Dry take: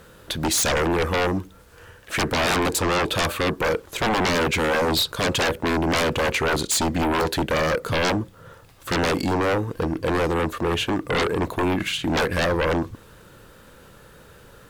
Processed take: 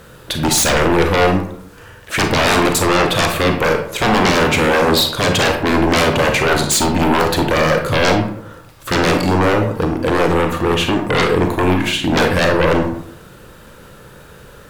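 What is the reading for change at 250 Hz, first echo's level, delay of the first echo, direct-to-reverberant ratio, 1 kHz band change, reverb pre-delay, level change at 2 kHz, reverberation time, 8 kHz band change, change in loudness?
+8.0 dB, no echo audible, no echo audible, 4.0 dB, +7.5 dB, 31 ms, +7.5 dB, 0.70 s, +6.5 dB, +7.5 dB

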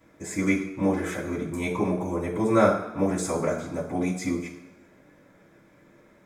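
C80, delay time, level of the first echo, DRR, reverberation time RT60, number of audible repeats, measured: 9.5 dB, no echo audible, no echo audible, −13.0 dB, 1.1 s, no echo audible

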